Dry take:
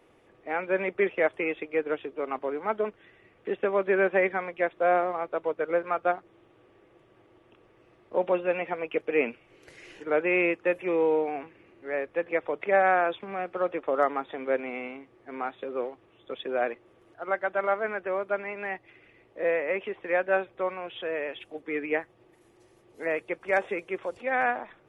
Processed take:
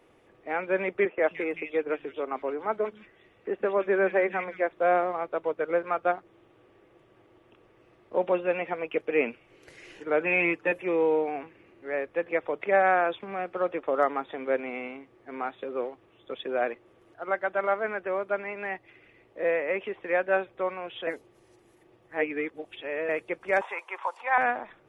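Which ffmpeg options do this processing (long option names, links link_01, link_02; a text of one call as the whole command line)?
ffmpeg -i in.wav -filter_complex "[0:a]asettb=1/sr,asplit=3[link_01][link_02][link_03];[link_01]atrim=end=1.054[link_04];[link_02]atrim=start=1.05:end=4.73,asetpts=PTS-STARTPTS,afade=type=in:duration=0.004:curve=qsin,afade=type=out:start_time=3.676:duration=0.004:curve=qsin,acrossover=split=170|2400[link_05][link_06][link_07];[link_05]adelay=130[link_08];[link_07]adelay=170[link_09];[link_08][link_06][link_09]amix=inputs=3:normalize=0,atrim=end_sample=162288[link_10];[link_03]atrim=start=4.726[link_11];[link_04][link_10]acrossfade=duration=0.004:curve1=hsin:curve2=qsin[link_12];[link_12][link_11]acrossfade=duration=0.004:curve1=qsin:curve2=hsin,asettb=1/sr,asplit=3[link_13][link_14][link_15];[link_13]atrim=end=10.204[link_16];[link_14]atrim=start=10.2:end=10.72,asetpts=PTS-STARTPTS,afade=type=in:duration=0.004:curve=qsin,afade=type=out:start_time=0.516:duration=0.004:curve=qsin,aecho=1:1:6.8:0.72,atrim=end_sample=22932[link_17];[link_15]atrim=start=10.716[link_18];[link_16][link_17]acrossfade=duration=0.004:curve1=hsin:curve2=qsin[link_19];[link_19][link_18]acrossfade=duration=0.004:curve1=qsin:curve2=hsin,asettb=1/sr,asplit=3[link_20][link_21][link_22];[link_20]atrim=end=23.614[link_23];[link_21]atrim=start=23.61:end=24.38,asetpts=PTS-STARTPTS,afade=type=in:duration=0.004:curve=qsin,afade=type=out:start_time=0.766:duration=0.004:curve=qsin,highpass=frequency=940:width_type=q:width=6.5[link_24];[link_22]atrim=start=24.376[link_25];[link_23][link_24]acrossfade=duration=0.004:curve1=hsin:curve2=qsin[link_26];[link_26][link_25]acrossfade=duration=0.004:curve1=qsin:curve2=hsin,asplit=3[link_27][link_28][link_29];[link_27]atrim=end=21.072[link_30];[link_28]atrim=start=21.068:end=23.092,asetpts=PTS-STARTPTS,areverse[link_31];[link_29]atrim=start=23.088[link_32];[link_30][link_31]acrossfade=duration=0.004:curve1=hsin:curve2=hsin[link_33];[link_33][link_32]acrossfade=duration=0.004:curve1=hsin:curve2=hsin" out.wav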